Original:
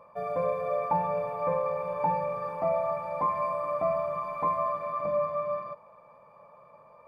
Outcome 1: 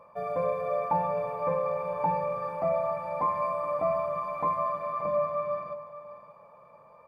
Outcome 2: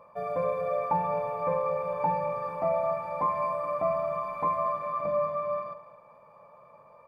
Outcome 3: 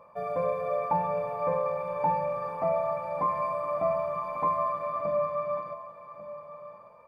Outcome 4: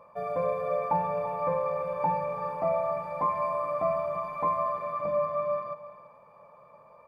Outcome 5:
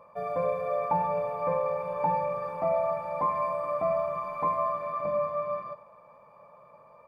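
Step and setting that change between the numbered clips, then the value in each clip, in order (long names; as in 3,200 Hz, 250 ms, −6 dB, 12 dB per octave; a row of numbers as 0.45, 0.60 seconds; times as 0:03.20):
single-tap delay, delay time: 580, 212, 1,143, 338, 94 milliseconds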